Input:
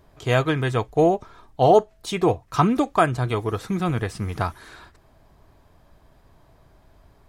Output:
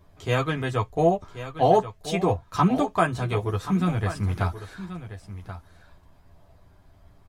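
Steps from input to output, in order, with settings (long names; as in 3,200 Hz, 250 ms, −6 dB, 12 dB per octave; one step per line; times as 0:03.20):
multi-voice chorus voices 6, 0.4 Hz, delay 11 ms, depth 1 ms
single-tap delay 1,081 ms −12.5 dB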